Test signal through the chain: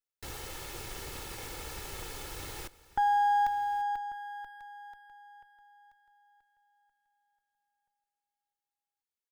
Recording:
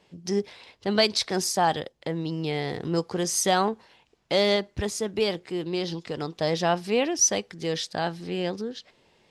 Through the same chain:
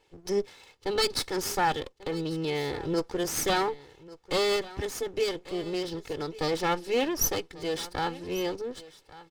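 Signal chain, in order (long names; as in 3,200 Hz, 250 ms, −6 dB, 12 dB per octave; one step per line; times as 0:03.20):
lower of the sound and its delayed copy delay 2.3 ms
single-tap delay 1,142 ms −18.5 dB
dynamic equaliser 250 Hz, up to +6 dB, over −47 dBFS, Q 2.4
level −3 dB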